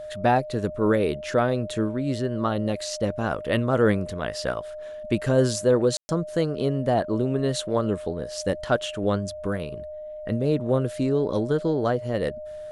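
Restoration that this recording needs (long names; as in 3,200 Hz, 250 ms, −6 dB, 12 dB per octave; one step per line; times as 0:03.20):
notch filter 610 Hz, Q 30
ambience match 0:05.97–0:06.09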